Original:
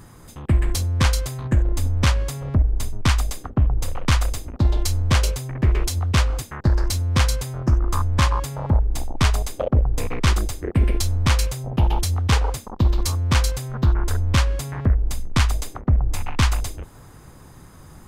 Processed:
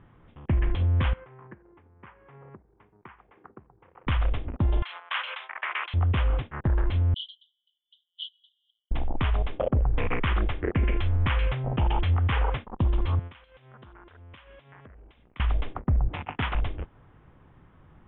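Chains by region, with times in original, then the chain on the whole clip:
1.13–4.07 compressor, threshold -27 dBFS + speaker cabinet 230–2100 Hz, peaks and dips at 260 Hz -8 dB, 380 Hz +3 dB, 600 Hz -9 dB, 930 Hz +3 dB
4.82–5.94 HPF 1000 Hz 24 dB/oct + fast leveller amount 50%
7.14–8.91 brick-wall FIR band-pass 2900–6200 Hz + mismatched tape noise reduction encoder only
9.8–12.65 LPF 5400 Hz + bell 1800 Hz +6 dB 2 oct
13.19–15.4 HPF 110 Hz 6 dB/oct + tilt +2.5 dB/oct + compressor 20:1, threshold -34 dBFS
16.08–16.55 HPF 120 Hz + Doppler distortion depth 0.48 ms
whole clip: gate -32 dBFS, range -10 dB; limiter -16.5 dBFS; steep low-pass 3400 Hz 96 dB/oct

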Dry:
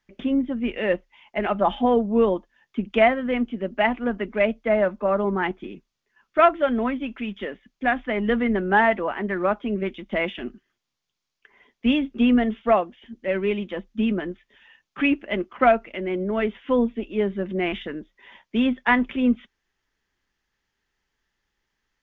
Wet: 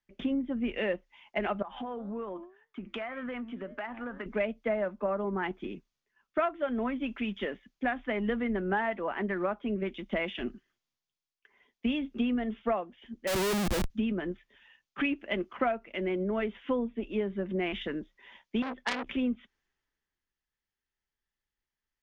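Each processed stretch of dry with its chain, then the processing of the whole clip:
1.62–4.26 bell 1300 Hz +11 dB 1.2 oct + flange 1.9 Hz, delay 6.4 ms, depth 2.6 ms, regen +88% + compressor 16:1, threshold -31 dBFS
13.27–13.9 median filter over 41 samples + Schmitt trigger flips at -46.5 dBFS
18.62–19.07 high shelf 2500 Hz -5.5 dB + core saturation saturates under 2800 Hz
whole clip: compressor 6:1, threshold -28 dBFS; three-band expander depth 40%

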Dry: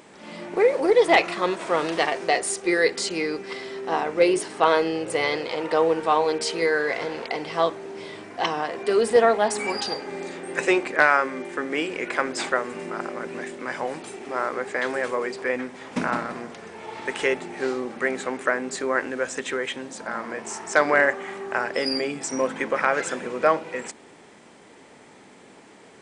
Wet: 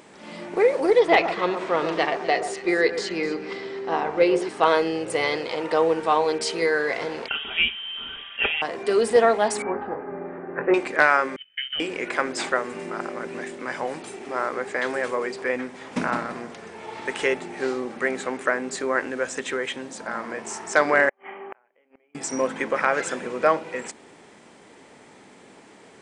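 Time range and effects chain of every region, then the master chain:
0.99–4.49 air absorption 100 m + echo with dull and thin repeats by turns 0.127 s, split 1500 Hz, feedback 52%, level -9 dB
7.28–8.62 comb 5.2 ms, depth 49% + inverted band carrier 3500 Hz
9.62–10.74 inverse Chebyshev low-pass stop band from 5200 Hz, stop band 60 dB + doubler 22 ms -7 dB
11.36–11.8 gate -31 dBFS, range -24 dB + fixed phaser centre 630 Hz, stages 6 + inverted band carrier 3400 Hz
21.09–22.15 rippled Chebyshev low-pass 3200 Hz, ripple 6 dB + bell 120 Hz -13.5 dB 1 oct + flipped gate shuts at -24 dBFS, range -35 dB
whole clip: dry

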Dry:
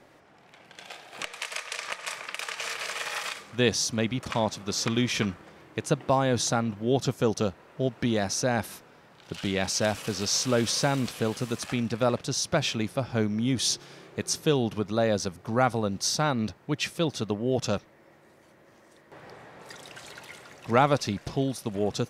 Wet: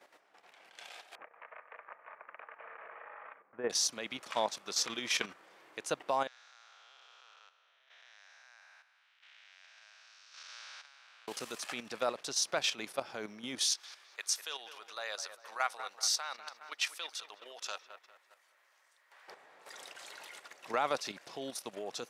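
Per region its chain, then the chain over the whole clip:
1.15–3.7 G.711 law mismatch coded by A + Bessel low-pass 1100 Hz, order 8
6.27–11.28 time blur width 0.49 s + Bessel high-pass 1900 Hz, order 4 + tape spacing loss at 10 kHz 32 dB
13.64–19.28 HPF 1100 Hz + dark delay 0.201 s, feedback 47%, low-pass 2400 Hz, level -11 dB
whole clip: Bessel high-pass 660 Hz, order 2; level quantiser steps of 10 dB

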